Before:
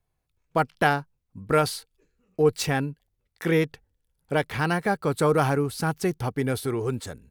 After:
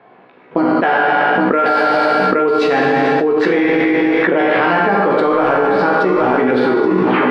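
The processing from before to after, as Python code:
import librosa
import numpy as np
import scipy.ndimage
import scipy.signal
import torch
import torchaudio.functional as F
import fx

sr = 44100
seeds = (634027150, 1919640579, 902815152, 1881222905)

p1 = fx.tape_stop_end(x, sr, length_s=0.5)
p2 = fx.spec_box(p1, sr, start_s=0.56, length_s=0.26, low_hz=360.0, high_hz=3800.0, gain_db=-14)
p3 = fx.env_lowpass(p2, sr, base_hz=2300.0, full_db=-17.5)
p4 = scipy.signal.sosfilt(scipy.signal.butter(4, 240.0, 'highpass', fs=sr, output='sos'), p3)
p5 = fx.level_steps(p4, sr, step_db=20)
p6 = p4 + F.gain(torch.from_numpy(p5), -2.0).numpy()
p7 = fx.air_absorb(p6, sr, metres=370.0)
p8 = fx.doubler(p7, sr, ms=16.0, db=-4)
p9 = p8 + fx.echo_single(p8, sr, ms=819, db=-8.0, dry=0)
p10 = fx.rev_schroeder(p9, sr, rt60_s=1.3, comb_ms=32, drr_db=-0.5)
p11 = fx.env_flatten(p10, sr, amount_pct=100)
y = F.gain(torch.from_numpy(p11), -2.0).numpy()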